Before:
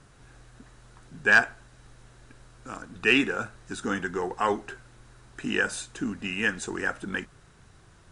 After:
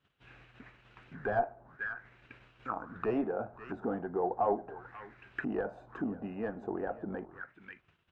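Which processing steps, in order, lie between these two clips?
high-pass 91 Hz 6 dB/octave; gate -54 dBFS, range -22 dB; in parallel at -0.5 dB: compression, threshold -35 dBFS, peak gain reduction 20 dB; on the sum: one-sided clip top -19.5 dBFS, bottom -11.5 dBFS; on a send: delay 539 ms -18 dB; on the sum: touch-sensitive low-pass 690–3100 Hz down, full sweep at -28.5 dBFS; trim -8 dB

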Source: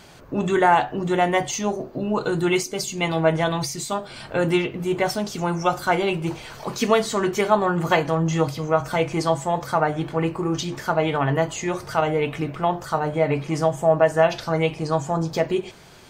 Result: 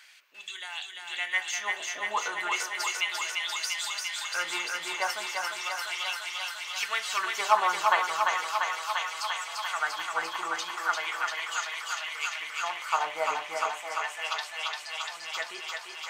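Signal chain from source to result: added noise brown -55 dBFS; LFO high-pass sine 0.36 Hz 950–3400 Hz; thinning echo 345 ms, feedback 83%, high-pass 460 Hz, level -3 dB; trim -7 dB

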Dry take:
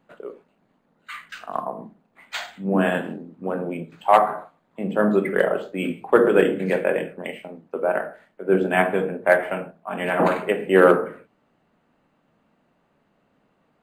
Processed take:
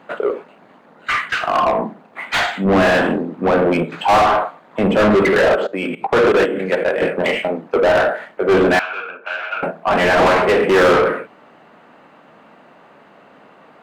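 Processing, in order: 5.55–7.02 s: level held to a coarse grid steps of 19 dB; overdrive pedal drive 34 dB, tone 1.9 kHz, clips at -2 dBFS; 8.79–9.63 s: two resonant band-passes 1.9 kHz, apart 0.79 oct; trim -3 dB

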